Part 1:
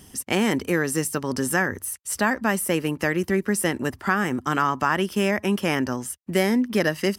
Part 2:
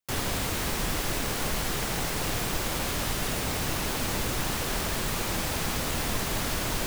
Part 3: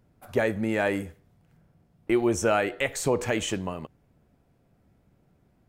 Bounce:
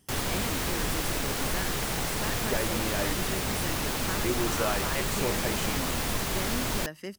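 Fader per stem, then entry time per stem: -15.5 dB, -0.5 dB, -7.5 dB; 0.00 s, 0.00 s, 2.15 s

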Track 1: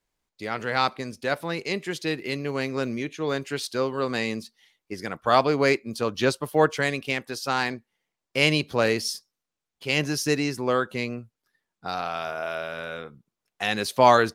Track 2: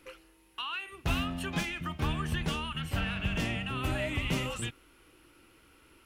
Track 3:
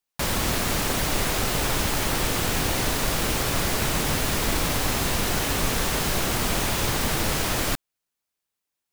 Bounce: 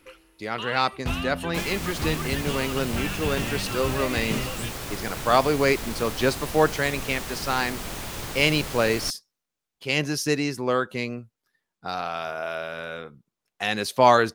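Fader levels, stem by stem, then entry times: 0.0 dB, +1.5 dB, -9.5 dB; 0.00 s, 0.00 s, 1.35 s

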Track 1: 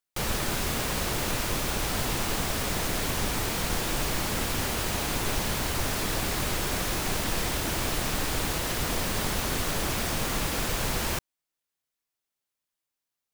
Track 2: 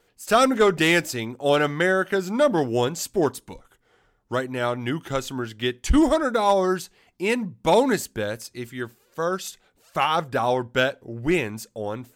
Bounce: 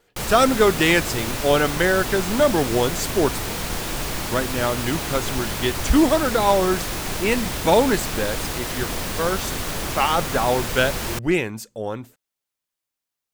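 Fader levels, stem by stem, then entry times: +1.5 dB, +1.5 dB; 0.00 s, 0.00 s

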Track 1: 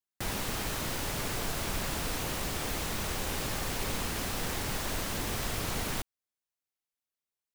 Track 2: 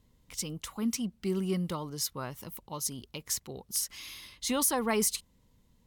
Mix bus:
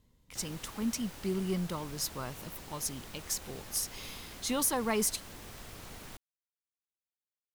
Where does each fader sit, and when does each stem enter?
-14.0 dB, -2.0 dB; 0.15 s, 0.00 s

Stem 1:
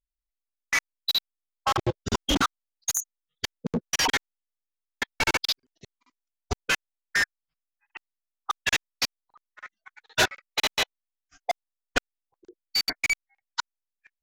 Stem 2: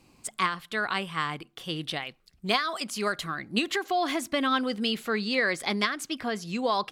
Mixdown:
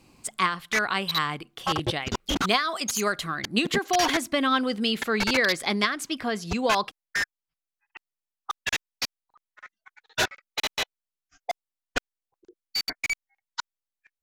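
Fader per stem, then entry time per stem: -3.0 dB, +2.5 dB; 0.00 s, 0.00 s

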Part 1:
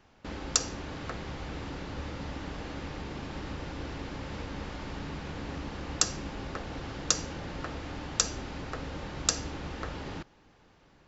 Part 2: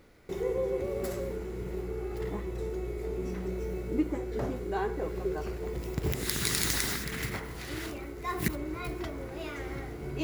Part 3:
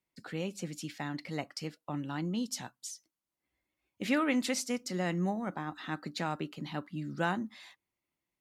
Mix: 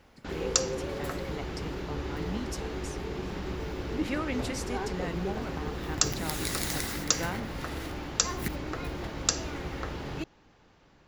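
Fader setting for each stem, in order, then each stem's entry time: +0.5 dB, -4.0 dB, -4.0 dB; 0.00 s, 0.00 s, 0.00 s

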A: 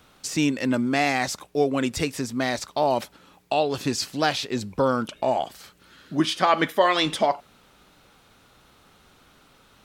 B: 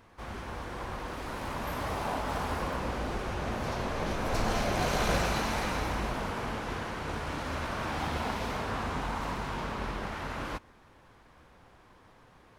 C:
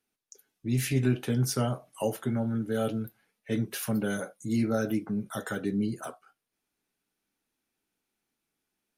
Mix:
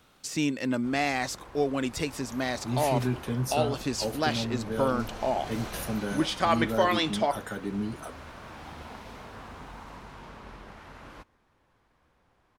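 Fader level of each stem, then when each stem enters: -5.0 dB, -10.5 dB, -3.0 dB; 0.00 s, 0.65 s, 2.00 s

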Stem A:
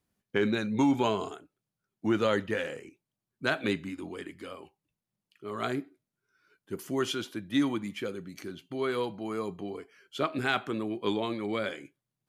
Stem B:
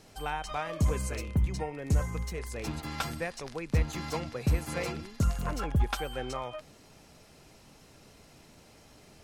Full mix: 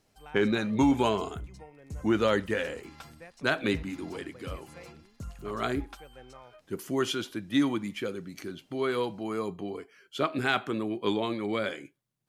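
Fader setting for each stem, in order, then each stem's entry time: +1.5 dB, -14.0 dB; 0.00 s, 0.00 s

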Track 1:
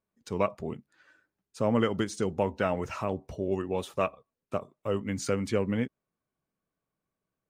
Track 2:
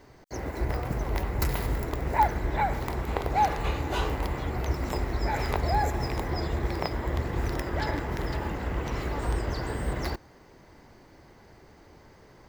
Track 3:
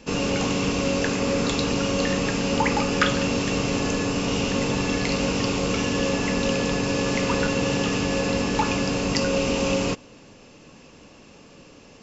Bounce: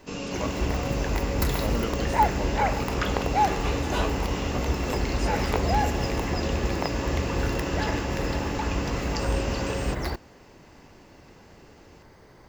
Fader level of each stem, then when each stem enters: -6.5 dB, +1.5 dB, -9.0 dB; 0.00 s, 0.00 s, 0.00 s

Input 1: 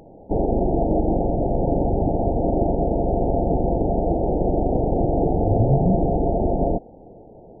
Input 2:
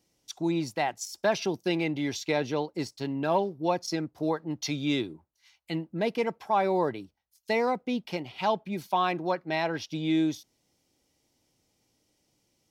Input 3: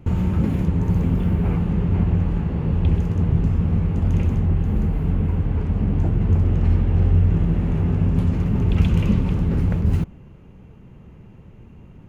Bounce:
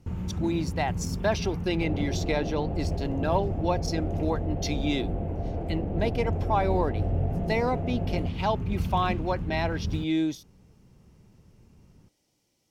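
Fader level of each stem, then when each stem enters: -14.5 dB, -0.5 dB, -12.0 dB; 1.50 s, 0.00 s, 0.00 s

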